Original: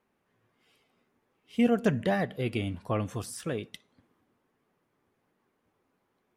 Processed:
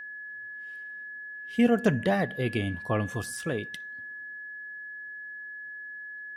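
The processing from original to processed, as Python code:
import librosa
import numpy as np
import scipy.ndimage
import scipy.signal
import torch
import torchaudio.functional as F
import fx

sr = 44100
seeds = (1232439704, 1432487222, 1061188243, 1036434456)

y = x + 10.0 ** (-40.0 / 20.0) * np.sin(2.0 * np.pi * 1700.0 * np.arange(len(x)) / sr)
y = y * librosa.db_to_amplitude(2.0)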